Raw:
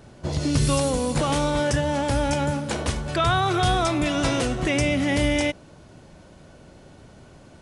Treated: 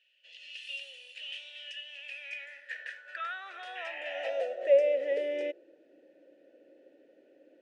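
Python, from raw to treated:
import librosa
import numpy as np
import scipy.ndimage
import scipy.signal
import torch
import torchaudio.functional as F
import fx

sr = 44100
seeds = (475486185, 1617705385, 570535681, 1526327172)

y = fx.spec_paint(x, sr, seeds[0], shape='noise', start_s=3.75, length_s=0.55, low_hz=1600.0, high_hz=3200.0, level_db=-29.0)
y = fx.vowel_filter(y, sr, vowel='e')
y = fx.filter_sweep_highpass(y, sr, from_hz=2900.0, to_hz=300.0, start_s=1.9, end_s=5.82, q=7.0)
y = y * 10.0 ** (-4.5 / 20.0)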